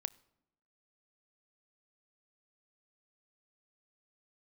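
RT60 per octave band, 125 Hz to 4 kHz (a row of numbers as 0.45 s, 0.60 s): 0.95 s, 1.0 s, 0.90 s, 0.80 s, 0.65 s, 0.55 s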